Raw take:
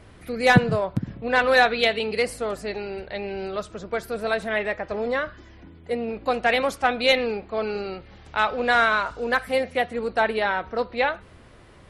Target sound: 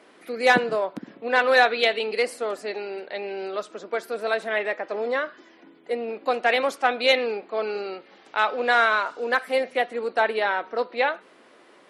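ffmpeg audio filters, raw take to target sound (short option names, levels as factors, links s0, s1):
-af "highpass=f=270:w=0.5412,highpass=f=270:w=1.3066,highshelf=f=9900:g=-6"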